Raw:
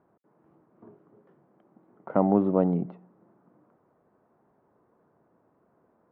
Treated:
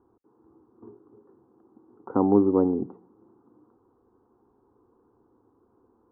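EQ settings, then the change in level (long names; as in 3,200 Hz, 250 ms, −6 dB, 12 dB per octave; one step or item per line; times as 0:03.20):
low-pass filter 1,100 Hz 12 dB per octave
low-shelf EQ 230 Hz +9 dB
phaser with its sweep stopped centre 620 Hz, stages 6
+3.5 dB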